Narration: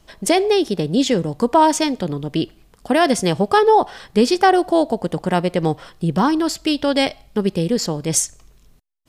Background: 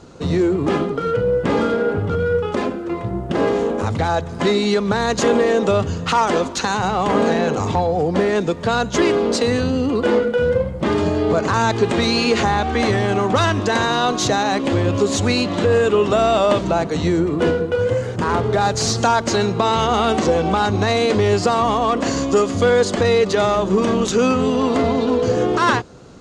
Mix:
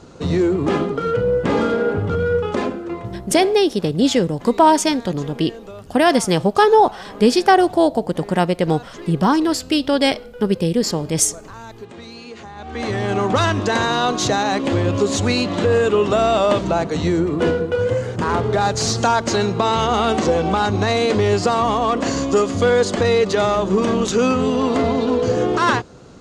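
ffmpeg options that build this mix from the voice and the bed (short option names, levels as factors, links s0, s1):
-filter_complex "[0:a]adelay=3050,volume=1.12[s0];[1:a]volume=8.91,afade=t=out:st=2.6:d=0.97:silence=0.105925,afade=t=in:st=12.55:d=0.68:silence=0.112202[s1];[s0][s1]amix=inputs=2:normalize=0"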